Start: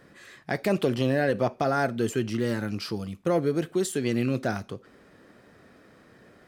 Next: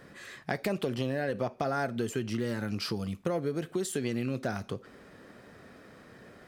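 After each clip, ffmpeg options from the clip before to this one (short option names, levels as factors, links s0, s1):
-af "acompressor=threshold=0.0282:ratio=4,equalizer=f=320:w=5.6:g=-3,volume=1.33"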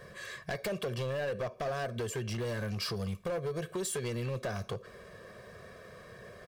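-af "aecho=1:1:1.8:0.89,acompressor=threshold=0.0282:ratio=2,volume=33.5,asoftclip=hard,volume=0.0299"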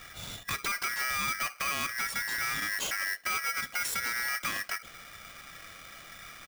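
-af "aeval=exprs='val(0)*sgn(sin(2*PI*1800*n/s))':c=same,volume=1.33"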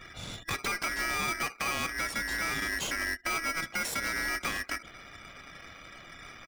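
-filter_complex "[0:a]highshelf=f=11000:g=-7,afftfilt=real='re*gte(hypot(re,im),0.00282)':imag='im*gte(hypot(re,im),0.00282)':win_size=1024:overlap=0.75,asplit=2[s0][s1];[s1]acrusher=samples=27:mix=1:aa=0.000001,volume=0.335[s2];[s0][s2]amix=inputs=2:normalize=0"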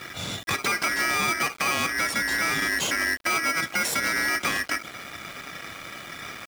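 -filter_complex "[0:a]highpass=100,asplit=2[s0][s1];[s1]alimiter=level_in=2.99:limit=0.0631:level=0:latency=1:release=22,volume=0.335,volume=1.12[s2];[s0][s2]amix=inputs=2:normalize=0,aeval=exprs='val(0)*gte(abs(val(0)),0.00631)':c=same,volume=1.58"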